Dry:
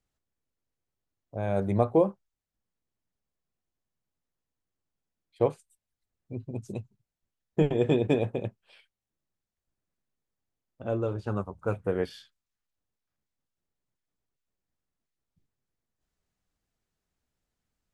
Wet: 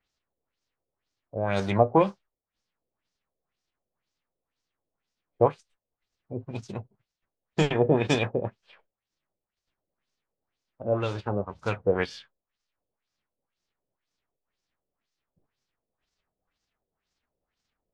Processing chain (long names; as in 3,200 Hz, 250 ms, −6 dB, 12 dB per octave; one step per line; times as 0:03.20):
spectral envelope flattened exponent 0.6
auto-filter low-pass sine 2 Hz 500–5,800 Hz